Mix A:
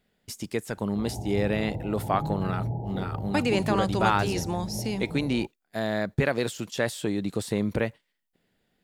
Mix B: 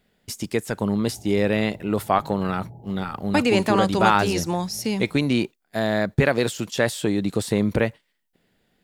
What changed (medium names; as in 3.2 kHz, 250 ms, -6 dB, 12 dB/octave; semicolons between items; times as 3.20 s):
speech +5.5 dB; background -11.5 dB